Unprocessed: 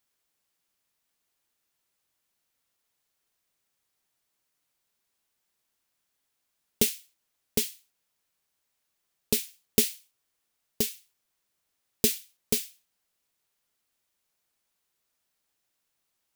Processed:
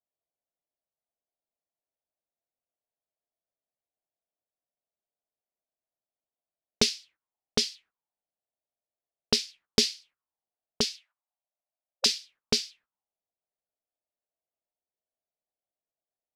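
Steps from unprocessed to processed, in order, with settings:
noise gate −58 dBFS, range −15 dB
0:10.84–0:12.06: linear-phase brick-wall high-pass 520 Hz
envelope-controlled low-pass 660–4,900 Hz up, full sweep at −29 dBFS

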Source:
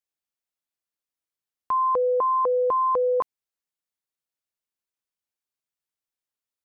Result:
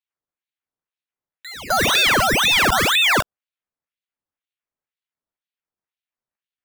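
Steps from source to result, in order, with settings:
low-pass filter 1,200 Hz 12 dB per octave
sample-and-hold swept by an LFO 15×, swing 100% 1.6 Hz
echo ahead of the sound 256 ms −17 dB
ring modulator whose carrier an LFO sweeps 1,700 Hz, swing 85%, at 2 Hz
level +9 dB

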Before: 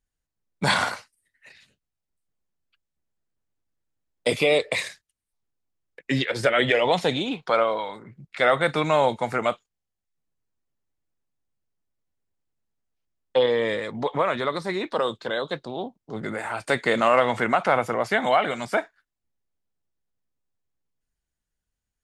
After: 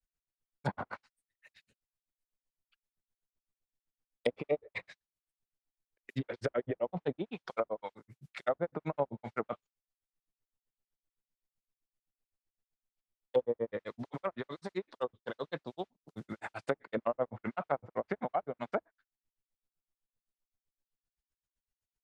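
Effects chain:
granular cloud 81 ms, grains 7.8 per second, spray 11 ms, pitch spread up and down by 0 semitones
noise that follows the level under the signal 25 dB
treble cut that deepens with the level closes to 660 Hz, closed at −23.5 dBFS
level −5 dB

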